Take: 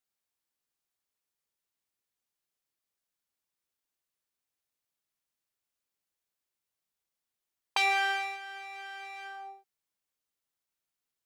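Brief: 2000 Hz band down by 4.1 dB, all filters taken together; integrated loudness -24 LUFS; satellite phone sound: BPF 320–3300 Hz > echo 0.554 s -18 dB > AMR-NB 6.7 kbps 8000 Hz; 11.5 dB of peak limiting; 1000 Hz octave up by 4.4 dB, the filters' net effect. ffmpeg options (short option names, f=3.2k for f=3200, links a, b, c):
-af "equalizer=f=1k:t=o:g=8,equalizer=f=2k:t=o:g=-7.5,alimiter=limit=-23dB:level=0:latency=1,highpass=320,lowpass=3.3k,aecho=1:1:554:0.126,volume=13dB" -ar 8000 -c:a libopencore_amrnb -b:a 6700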